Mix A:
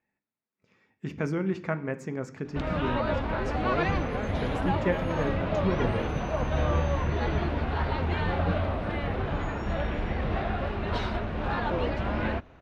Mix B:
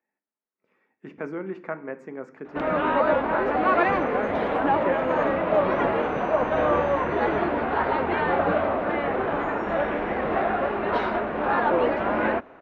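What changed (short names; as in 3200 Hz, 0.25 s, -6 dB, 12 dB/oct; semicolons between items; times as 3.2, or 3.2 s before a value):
background +9.0 dB; master: add three-band isolator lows -23 dB, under 240 Hz, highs -18 dB, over 2300 Hz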